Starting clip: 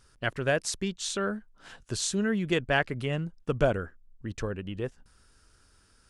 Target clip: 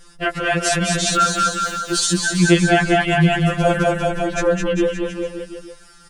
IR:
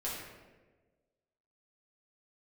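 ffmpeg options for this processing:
-filter_complex "[0:a]asettb=1/sr,asplit=3[a][b][c];[a]atrim=end=1.134[d];[b]atrim=start=1.13:end=2.07,asetpts=PTS-STARTPTS,afade=t=in:d=0.004:c=qsin,afade=t=out:st=0.936:d=0.004:c=qsin,aeval=exprs='val(0)*gte(abs(val(0)),0.00355)':c=same[e];[c]atrim=start=2.066[f];[d][e]acrossfade=d=0.004:c1=hsin:c2=qsin[g];[g][f]acrossfade=d=0.004:c1=qsin:c2=hsin,asettb=1/sr,asplit=3[h][i][j];[h]atrim=end=3.084[k];[i]atrim=start=3.08:end=3.8,asetpts=PTS-STARTPTS,afade=t=in:d=0.004:c=qsin,afade=t=out:st=0.716:d=0.004:c=qsin,highshelf=f=4.9k:g=11.5[l];[j]atrim=start=3.796[m];[k][l]acrossfade=d=0.004:c1=hsin:c2=qsin[n];[n][m]acrossfade=d=0.004:c1=qsin:c2=hsin,aecho=1:1:210|399|569.1|722.2|860:0.631|0.398|0.251|0.158|0.1,alimiter=level_in=19.5dB:limit=-1dB:release=50:level=0:latency=1,afftfilt=real='re*2.83*eq(mod(b,8),0)':imag='im*2.83*eq(mod(b,8),0)':win_size=2048:overlap=0.75,volume=-3dB"

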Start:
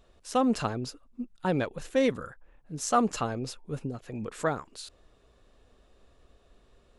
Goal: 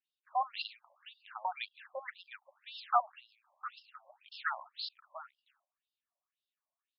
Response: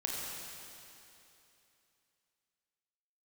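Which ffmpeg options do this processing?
-filter_complex "[0:a]agate=range=-24dB:threshold=-48dB:ratio=16:detection=peak,highshelf=f=2.6k:g=10.5,acrossover=split=210|450|3000[a][b][c][d];[b]alimiter=level_in=7dB:limit=-24dB:level=0:latency=1,volume=-7dB[e];[a][e][c][d]amix=inputs=4:normalize=0,asplit=3[f][g][h];[f]afade=t=out:st=3.1:d=0.02[i];[g]acompressor=threshold=-40dB:ratio=10,afade=t=in:st=3.1:d=0.02,afade=t=out:st=3.6:d=0.02[j];[h]afade=t=in:st=3.6:d=0.02[k];[i][j][k]amix=inputs=3:normalize=0,aecho=1:1:709:0.282,afftfilt=real='re*between(b*sr/1024,770*pow(3900/770,0.5+0.5*sin(2*PI*1.9*pts/sr))/1.41,770*pow(3900/770,0.5+0.5*sin(2*PI*1.9*pts/sr))*1.41)':imag='im*between(b*sr/1024,770*pow(3900/770,0.5+0.5*sin(2*PI*1.9*pts/sr))/1.41,770*pow(3900/770,0.5+0.5*sin(2*PI*1.9*pts/sr))*1.41)':win_size=1024:overlap=0.75,volume=-2dB"

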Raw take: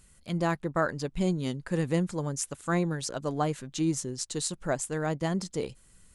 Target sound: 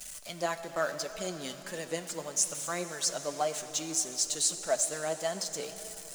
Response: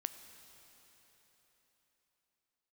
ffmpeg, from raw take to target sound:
-filter_complex "[0:a]aeval=exprs='val(0)+0.5*0.0112*sgn(val(0))':c=same,tiltshelf=f=1.4k:g=-7.5[a];[1:a]atrim=start_sample=2205[b];[a][b]afir=irnorm=-1:irlink=0,flanger=delay=4.5:depth=2.7:regen=47:speed=1.7:shape=sinusoidal,acrossover=split=200|1300|2500[c][d][e][f];[c]acompressor=threshold=-54dB:ratio=6[g];[g][d][e][f]amix=inputs=4:normalize=0,equalizer=f=100:t=o:w=0.67:g=-9,equalizer=f=630:t=o:w=0.67:g=11,equalizer=f=6.3k:t=o:w=0.67:g=5"

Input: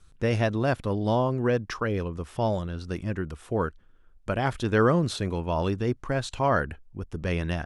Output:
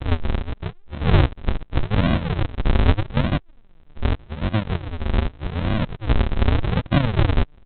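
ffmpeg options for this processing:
-af "areverse,aresample=8000,acrusher=samples=36:mix=1:aa=0.000001:lfo=1:lforange=36:lforate=0.83,aresample=44100,volume=7dB"

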